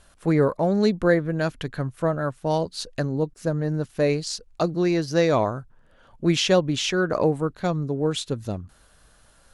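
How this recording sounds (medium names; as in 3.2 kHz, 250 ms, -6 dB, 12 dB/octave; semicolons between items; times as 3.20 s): noise floor -57 dBFS; spectral tilt -5.0 dB/octave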